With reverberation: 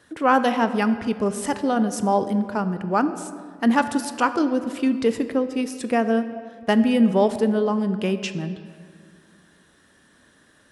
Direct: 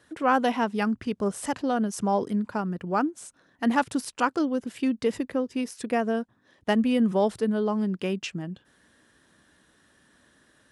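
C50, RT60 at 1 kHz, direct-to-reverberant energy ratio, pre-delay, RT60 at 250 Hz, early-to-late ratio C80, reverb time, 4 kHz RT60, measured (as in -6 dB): 11.5 dB, 1.8 s, 10.0 dB, 4 ms, 2.3 s, 12.5 dB, 2.0 s, 1.2 s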